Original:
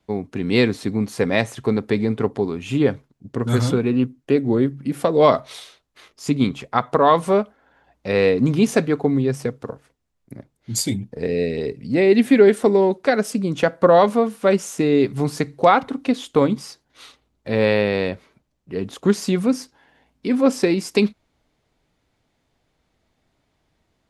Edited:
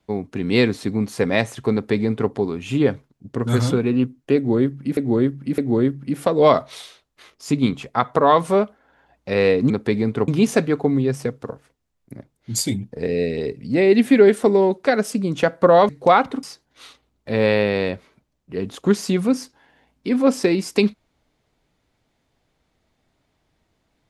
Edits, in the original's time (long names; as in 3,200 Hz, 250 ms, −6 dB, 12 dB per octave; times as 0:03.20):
0:01.73–0:02.31: duplicate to 0:08.48
0:04.36–0:04.97: repeat, 3 plays
0:14.09–0:15.46: remove
0:16.00–0:16.62: remove